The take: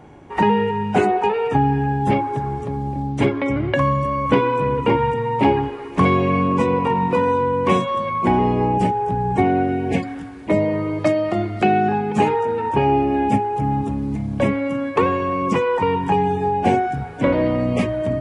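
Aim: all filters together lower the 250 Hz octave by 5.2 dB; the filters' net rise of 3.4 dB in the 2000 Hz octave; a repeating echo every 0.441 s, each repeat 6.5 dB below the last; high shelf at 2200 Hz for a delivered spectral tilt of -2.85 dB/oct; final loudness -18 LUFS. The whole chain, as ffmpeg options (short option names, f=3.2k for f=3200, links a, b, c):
-af "equalizer=f=250:t=o:g=-7,equalizer=f=2k:t=o:g=8,highshelf=f=2.2k:g=-7,aecho=1:1:441|882|1323|1764|2205|2646:0.473|0.222|0.105|0.0491|0.0231|0.0109,volume=2dB"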